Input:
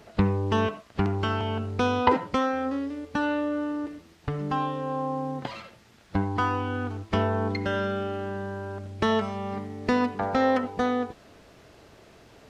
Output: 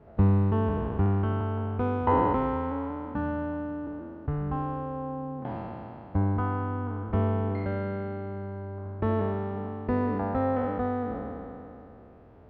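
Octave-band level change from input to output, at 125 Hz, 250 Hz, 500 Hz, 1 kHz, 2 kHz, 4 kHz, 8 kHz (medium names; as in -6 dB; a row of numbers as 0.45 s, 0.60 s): +3.5 dB, -1.5 dB, -2.5 dB, -3.0 dB, -9.5 dB, under -15 dB, no reading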